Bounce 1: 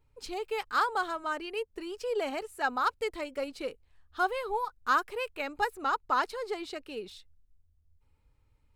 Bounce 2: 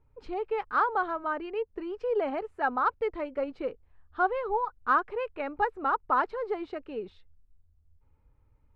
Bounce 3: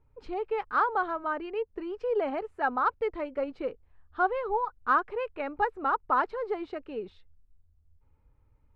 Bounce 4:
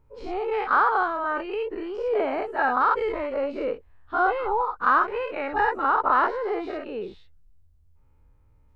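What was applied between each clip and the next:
low-pass filter 1,500 Hz 12 dB per octave; level +3.5 dB
no processing that can be heard
every bin's largest magnitude spread in time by 120 ms

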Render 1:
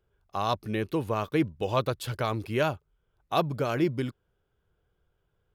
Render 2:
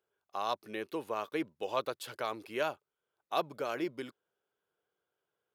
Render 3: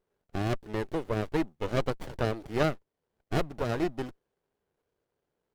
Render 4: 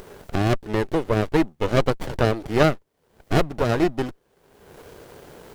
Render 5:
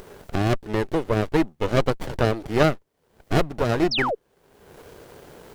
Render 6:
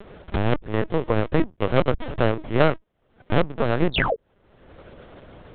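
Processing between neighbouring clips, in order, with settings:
high-pass filter 370 Hz 12 dB per octave; level −5.5 dB
windowed peak hold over 33 samples; level +6.5 dB
upward compression, threshold −30 dBFS; level +9 dB
sound drawn into the spectrogram fall, 0:03.91–0:04.15, 400–5,900 Hz −23 dBFS; level −1 dB
linear-prediction vocoder at 8 kHz pitch kept; level +1 dB

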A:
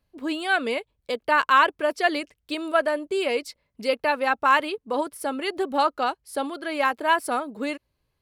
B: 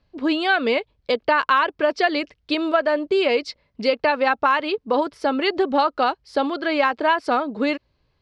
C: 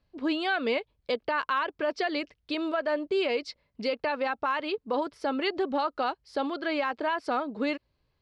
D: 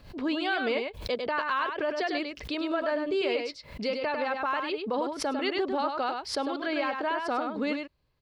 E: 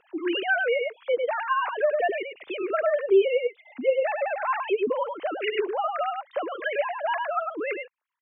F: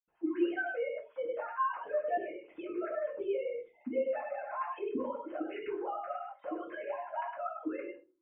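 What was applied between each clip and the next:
Chebyshev low-pass filter 5,000 Hz, order 3; downward compressor 6 to 1, threshold −23 dBFS, peak gain reduction 10 dB; level +8 dB
brickwall limiter −12 dBFS, peak gain reduction 6 dB; level −7 dB
single-tap delay 100 ms −5 dB; background raised ahead of every attack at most 110 dB per second; level −1.5 dB
three sine waves on the formant tracks; in parallel at −2.5 dB: brickwall limiter −23 dBFS, peak gain reduction 10.5 dB
high-frequency loss of the air 95 metres; convolution reverb, pre-delay 77 ms; level +8 dB

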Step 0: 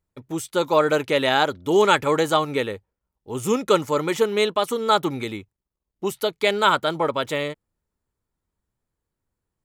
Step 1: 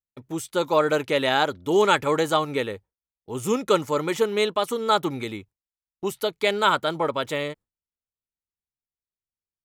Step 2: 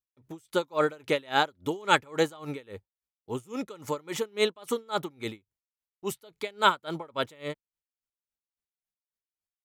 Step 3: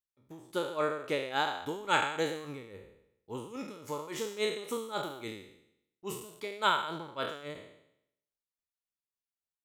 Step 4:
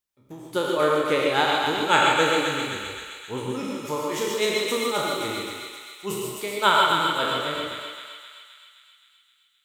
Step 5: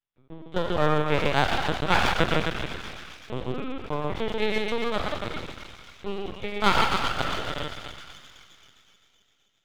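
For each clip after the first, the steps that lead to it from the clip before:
noise gate with hold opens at −40 dBFS; level −2 dB
tremolo with a sine in dB 3.6 Hz, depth 28 dB
peak hold with a decay on every bin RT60 0.76 s; level −8 dB
feedback echo with a high-pass in the loop 261 ms, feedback 65%, high-pass 1,100 Hz, level −3.5 dB; reverb whose tail is shaped and stops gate 170 ms rising, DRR 0.5 dB; level +7.5 dB
linear-prediction vocoder at 8 kHz pitch kept; half-wave rectification

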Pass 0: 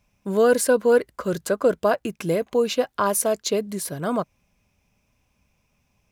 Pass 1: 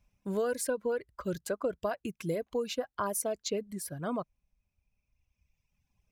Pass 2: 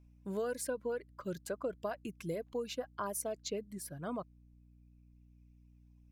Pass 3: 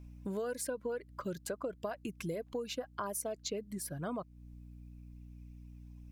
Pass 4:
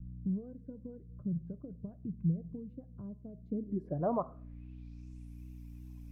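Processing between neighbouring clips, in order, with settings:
downward compressor, threshold −18 dBFS, peak gain reduction 5.5 dB; low-shelf EQ 86 Hz +11.5 dB; reverb reduction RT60 1.9 s; level −9 dB
mains hum 60 Hz, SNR 20 dB; level −5.5 dB
downward compressor 2.5 to 1, threshold −51 dBFS, peak gain reduction 12.5 dB; level +10.5 dB
rectangular room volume 790 cubic metres, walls furnished, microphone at 0.38 metres; pitch vibrato 2.6 Hz 52 cents; low-pass filter sweep 160 Hz → 14,000 Hz, 0:03.40–0:05.42; level +3.5 dB

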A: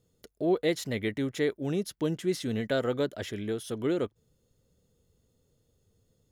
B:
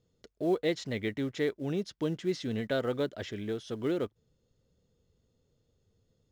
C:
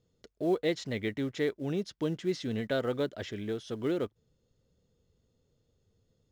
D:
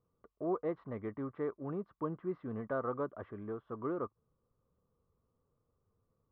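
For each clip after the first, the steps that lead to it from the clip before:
low-pass filter 6,300 Hz 24 dB per octave; in parallel at −11 dB: floating-point word with a short mantissa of 2 bits; on the sum: level −4.5 dB
no processing that can be heard
transistor ladder low-pass 1,200 Hz, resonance 80%; level +5 dB

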